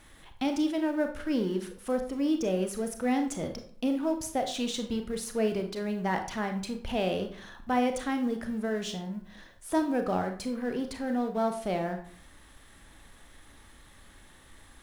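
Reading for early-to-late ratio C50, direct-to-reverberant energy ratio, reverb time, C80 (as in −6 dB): 9.0 dB, 5.5 dB, 0.50 s, 13.0 dB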